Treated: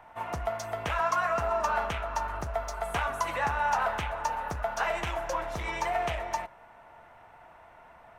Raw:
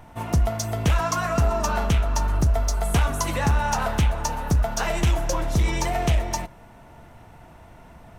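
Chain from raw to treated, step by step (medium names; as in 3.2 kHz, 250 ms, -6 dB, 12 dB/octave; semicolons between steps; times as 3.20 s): three-band isolator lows -18 dB, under 550 Hz, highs -14 dB, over 2.6 kHz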